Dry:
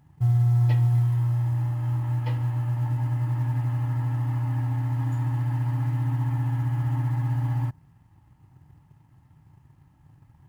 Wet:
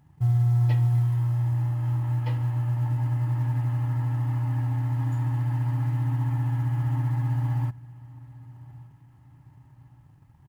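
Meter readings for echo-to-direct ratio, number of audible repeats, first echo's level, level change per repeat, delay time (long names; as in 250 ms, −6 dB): −21.0 dB, 2, −22.0 dB, −5.5 dB, 1,175 ms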